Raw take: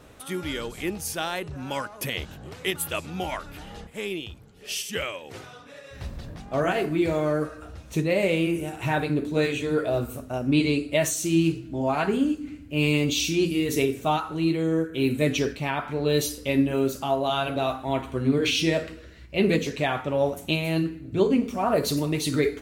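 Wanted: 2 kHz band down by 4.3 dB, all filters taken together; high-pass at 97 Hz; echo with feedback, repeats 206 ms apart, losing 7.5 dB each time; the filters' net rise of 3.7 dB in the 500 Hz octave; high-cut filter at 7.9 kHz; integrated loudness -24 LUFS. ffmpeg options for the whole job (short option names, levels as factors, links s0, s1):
-af "highpass=97,lowpass=7900,equalizer=f=500:t=o:g=5,equalizer=f=2000:t=o:g=-6,aecho=1:1:206|412|618|824|1030:0.422|0.177|0.0744|0.0312|0.0131,volume=0.944"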